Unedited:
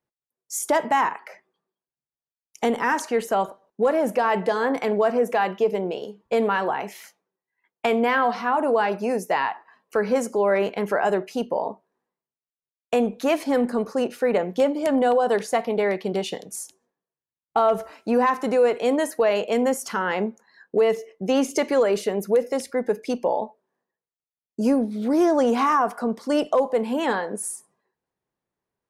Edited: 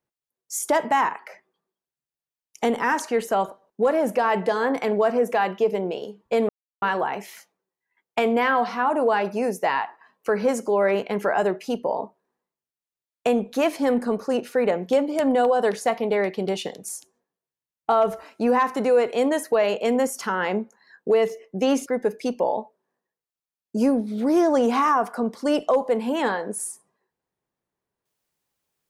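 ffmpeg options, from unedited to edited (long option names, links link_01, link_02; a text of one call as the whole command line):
ffmpeg -i in.wav -filter_complex "[0:a]asplit=3[link_01][link_02][link_03];[link_01]atrim=end=6.49,asetpts=PTS-STARTPTS,afade=type=out:start_time=6.486:duration=0.004:curve=hsin,apad=pad_dur=0.33[link_04];[link_02]atrim=start=6.49:end=21.532,asetpts=PTS-STARTPTS,afade=type=in:duration=0.004:curve=hsin[link_05];[link_03]atrim=start=22.698[link_06];[link_04][link_05]concat=n=2:v=0:a=1[link_07];[link_07][link_06]acrossfade=duration=0.004:curve1=hsin:curve2=hsin" out.wav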